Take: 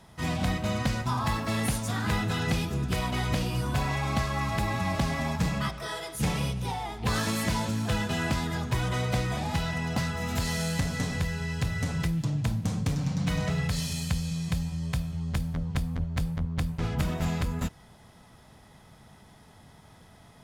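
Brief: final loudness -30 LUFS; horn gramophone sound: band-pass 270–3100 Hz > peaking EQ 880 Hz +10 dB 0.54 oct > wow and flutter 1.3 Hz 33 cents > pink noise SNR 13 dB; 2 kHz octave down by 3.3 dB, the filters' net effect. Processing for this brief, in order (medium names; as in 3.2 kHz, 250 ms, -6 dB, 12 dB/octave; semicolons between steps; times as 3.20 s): band-pass 270–3100 Hz; peaking EQ 880 Hz +10 dB 0.54 oct; peaking EQ 2 kHz -4 dB; wow and flutter 1.3 Hz 33 cents; pink noise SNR 13 dB; trim +2 dB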